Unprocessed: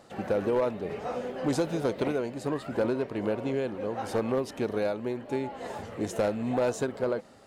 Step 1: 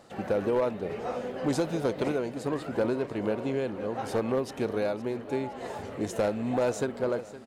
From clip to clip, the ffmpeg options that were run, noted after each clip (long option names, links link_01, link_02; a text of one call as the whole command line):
ffmpeg -i in.wav -af "aecho=1:1:515|1030|1545|2060|2575:0.158|0.084|0.0445|0.0236|0.0125" out.wav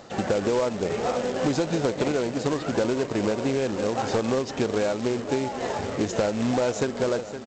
ffmpeg -i in.wav -af "acompressor=threshold=-30dB:ratio=4,aresample=16000,acrusher=bits=3:mode=log:mix=0:aa=0.000001,aresample=44100,volume=8.5dB" out.wav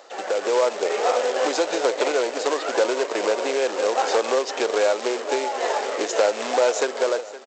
ffmpeg -i in.wav -af "highpass=frequency=430:width=0.5412,highpass=frequency=430:width=1.3066,dynaudnorm=framelen=100:gausssize=9:maxgain=6.5dB" out.wav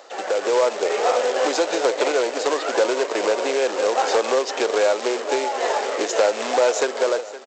ffmpeg -i in.wav -filter_complex "[0:a]highpass=150,asplit=2[link_01][link_02];[link_02]asoftclip=type=tanh:threshold=-18.5dB,volume=-11dB[link_03];[link_01][link_03]amix=inputs=2:normalize=0" out.wav